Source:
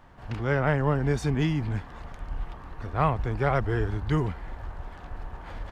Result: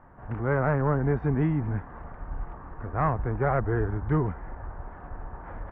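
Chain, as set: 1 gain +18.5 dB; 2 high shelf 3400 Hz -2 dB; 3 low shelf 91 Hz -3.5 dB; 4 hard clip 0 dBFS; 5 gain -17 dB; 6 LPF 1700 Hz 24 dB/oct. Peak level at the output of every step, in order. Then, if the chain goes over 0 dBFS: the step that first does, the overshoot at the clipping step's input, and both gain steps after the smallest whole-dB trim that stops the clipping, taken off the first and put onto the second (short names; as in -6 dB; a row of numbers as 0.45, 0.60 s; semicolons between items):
+8.5, +8.0, +8.0, 0.0, -17.0, -15.0 dBFS; step 1, 8.0 dB; step 1 +10.5 dB, step 5 -9 dB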